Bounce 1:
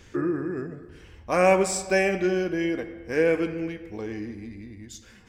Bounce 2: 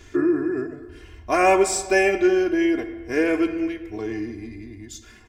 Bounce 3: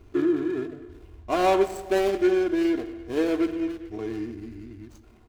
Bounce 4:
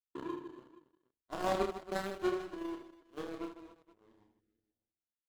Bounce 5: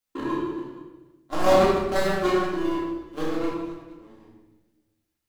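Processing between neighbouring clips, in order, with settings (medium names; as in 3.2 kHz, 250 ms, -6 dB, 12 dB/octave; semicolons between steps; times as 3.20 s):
comb 2.9 ms, depth 85%; trim +1.5 dB
median filter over 25 samples; trim -2.5 dB
power-law waveshaper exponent 3; reverse bouncing-ball echo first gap 30 ms, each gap 1.6×, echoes 5; spectral replace 4.43–4.76 s, 520–1200 Hz after; trim -6.5 dB
simulated room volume 320 m³, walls mixed, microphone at 2.2 m; trim +8 dB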